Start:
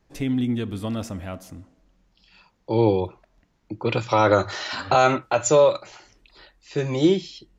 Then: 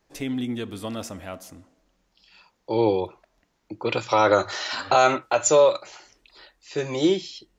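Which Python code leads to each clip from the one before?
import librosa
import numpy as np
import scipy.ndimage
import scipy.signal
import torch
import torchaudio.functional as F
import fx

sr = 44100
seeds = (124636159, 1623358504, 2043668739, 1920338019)

y = fx.bass_treble(x, sr, bass_db=-9, treble_db=3)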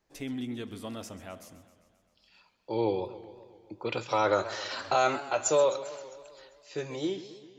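y = fx.fade_out_tail(x, sr, length_s=0.83)
y = fx.echo_warbled(y, sr, ms=132, feedback_pct=65, rate_hz=2.8, cents=162, wet_db=-15.0)
y = F.gain(torch.from_numpy(y), -7.5).numpy()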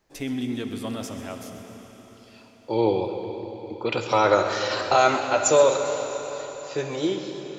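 y = fx.rev_freeverb(x, sr, rt60_s=4.9, hf_ratio=0.95, predelay_ms=20, drr_db=6.0)
y = F.gain(torch.from_numpy(y), 6.5).numpy()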